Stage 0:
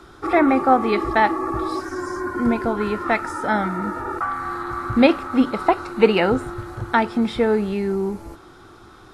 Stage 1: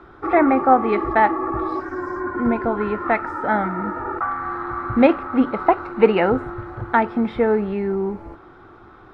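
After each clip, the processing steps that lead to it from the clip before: FFT filter 190 Hz 0 dB, 770 Hz +3 dB, 2.1 kHz 0 dB, 8 kHz -24 dB; trim -1 dB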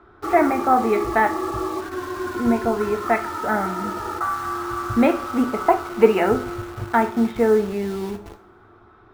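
in parallel at -5 dB: bit crusher 5-bit; on the sum: two-slope reverb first 0.33 s, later 1.7 s, from -22 dB, DRR 5 dB; trim -6.5 dB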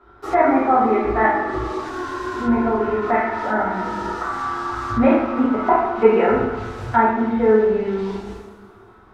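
two-slope reverb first 0.76 s, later 2.4 s, DRR -9 dB; low-pass that closes with the level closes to 2.3 kHz, closed at -10.5 dBFS; trim -6.5 dB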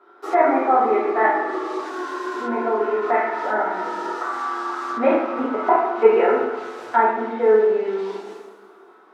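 high-pass 330 Hz 24 dB/octave; bass shelf 470 Hz +4 dB; trim -1.5 dB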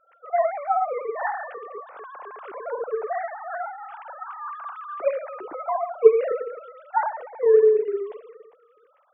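formants replaced by sine waves; trim -4.5 dB

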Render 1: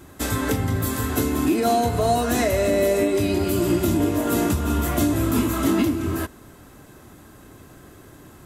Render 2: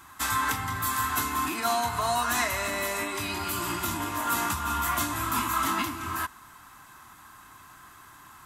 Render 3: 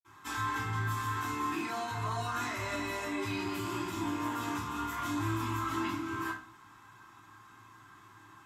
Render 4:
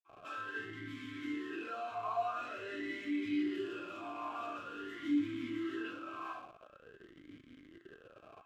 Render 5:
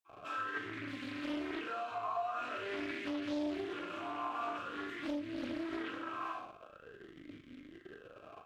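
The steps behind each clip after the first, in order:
resonant low shelf 720 Hz -12 dB, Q 3; trim -1 dB
band-stop 570 Hz, Q 12; peak limiter -20.5 dBFS, peak gain reduction 6.5 dB; reverberation RT60 0.40 s, pre-delay 46 ms
in parallel at -5.5 dB: Schmitt trigger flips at -48.5 dBFS; on the sum: talking filter a-i 0.47 Hz; trim +3.5 dB
compression 4:1, threshold -38 dBFS, peak gain reduction 9.5 dB; flutter echo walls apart 6.9 m, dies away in 0.28 s; loudspeaker Doppler distortion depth 0.55 ms; trim +2.5 dB

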